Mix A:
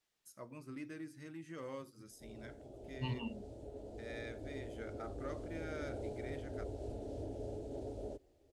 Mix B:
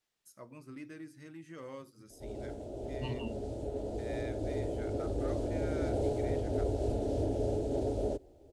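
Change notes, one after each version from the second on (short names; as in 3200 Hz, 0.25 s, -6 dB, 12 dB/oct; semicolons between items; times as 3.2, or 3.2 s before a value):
background +11.5 dB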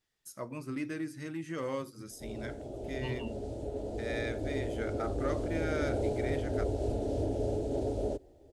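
first voice +10.0 dB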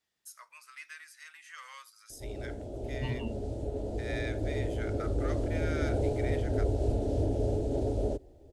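first voice: add inverse Chebyshev high-pass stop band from 210 Hz, stop band 80 dB; master: add low shelf 160 Hz +7 dB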